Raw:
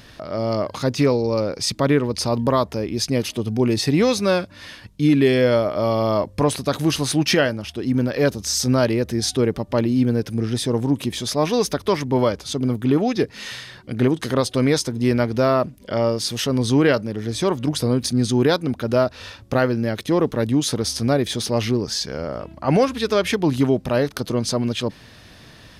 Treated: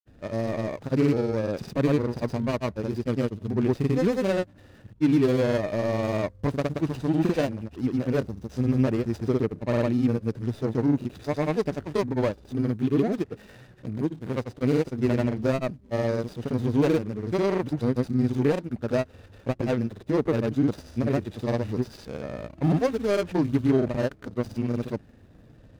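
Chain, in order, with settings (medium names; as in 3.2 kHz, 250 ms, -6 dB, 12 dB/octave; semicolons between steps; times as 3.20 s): median filter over 41 samples; granulator, grains 20 per s, pitch spread up and down by 0 st; trim -3 dB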